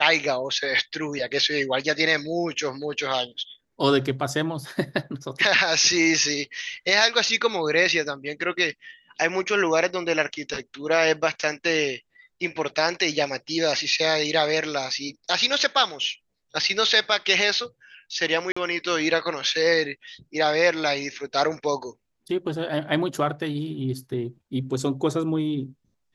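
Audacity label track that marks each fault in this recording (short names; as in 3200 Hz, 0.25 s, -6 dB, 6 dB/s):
18.520000	18.570000	gap 45 ms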